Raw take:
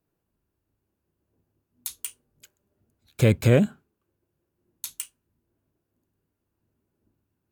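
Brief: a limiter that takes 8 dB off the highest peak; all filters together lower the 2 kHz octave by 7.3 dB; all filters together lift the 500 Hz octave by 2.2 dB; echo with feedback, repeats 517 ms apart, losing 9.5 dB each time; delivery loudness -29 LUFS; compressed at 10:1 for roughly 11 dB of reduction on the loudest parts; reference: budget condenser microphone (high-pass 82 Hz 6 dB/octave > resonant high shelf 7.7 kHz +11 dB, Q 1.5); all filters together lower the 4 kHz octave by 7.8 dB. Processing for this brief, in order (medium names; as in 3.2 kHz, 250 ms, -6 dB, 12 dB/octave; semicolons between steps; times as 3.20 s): peaking EQ 500 Hz +3 dB; peaking EQ 2 kHz -7 dB; peaking EQ 4 kHz -5.5 dB; compression 10:1, threshold -23 dBFS; peak limiter -22 dBFS; high-pass 82 Hz 6 dB/octave; resonant high shelf 7.7 kHz +11 dB, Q 1.5; feedback delay 517 ms, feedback 33%, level -9.5 dB; trim +5 dB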